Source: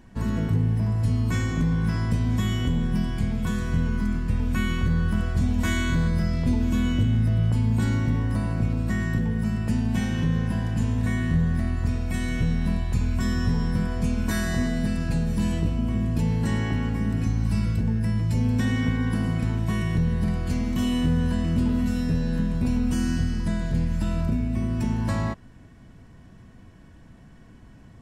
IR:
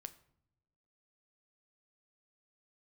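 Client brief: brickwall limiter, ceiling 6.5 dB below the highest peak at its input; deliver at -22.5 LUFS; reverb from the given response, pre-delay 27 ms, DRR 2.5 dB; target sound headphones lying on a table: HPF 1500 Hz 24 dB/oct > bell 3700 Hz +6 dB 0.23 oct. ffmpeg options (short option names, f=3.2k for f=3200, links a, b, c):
-filter_complex "[0:a]alimiter=limit=-20dB:level=0:latency=1,asplit=2[a][b];[1:a]atrim=start_sample=2205,adelay=27[c];[b][c]afir=irnorm=-1:irlink=0,volume=3dB[d];[a][d]amix=inputs=2:normalize=0,highpass=f=1.5k:w=0.5412,highpass=f=1.5k:w=1.3066,equalizer=f=3.7k:t=o:w=0.23:g=6,volume=16.5dB"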